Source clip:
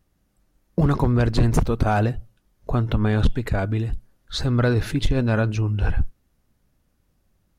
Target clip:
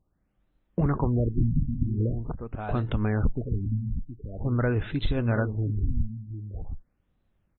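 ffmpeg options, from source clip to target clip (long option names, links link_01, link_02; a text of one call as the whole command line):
ffmpeg -i in.wav -af "aecho=1:1:723:0.355,afftfilt=real='re*lt(b*sr/1024,260*pow(4200/260,0.5+0.5*sin(2*PI*0.45*pts/sr)))':imag='im*lt(b*sr/1024,260*pow(4200/260,0.5+0.5*sin(2*PI*0.45*pts/sr)))':win_size=1024:overlap=0.75,volume=-5.5dB" out.wav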